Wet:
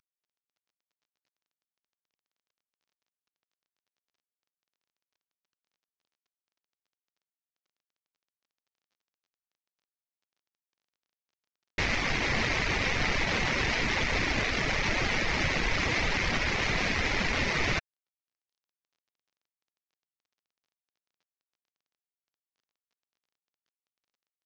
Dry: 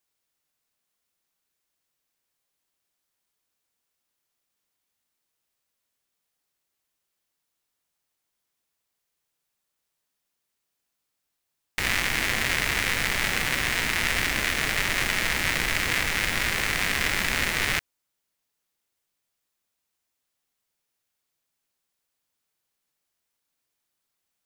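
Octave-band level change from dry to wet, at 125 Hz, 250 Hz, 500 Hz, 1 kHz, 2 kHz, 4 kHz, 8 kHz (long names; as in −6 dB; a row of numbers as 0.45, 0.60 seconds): +1.5, +2.0, +2.0, −1.0, −4.0, −4.5, −9.5 decibels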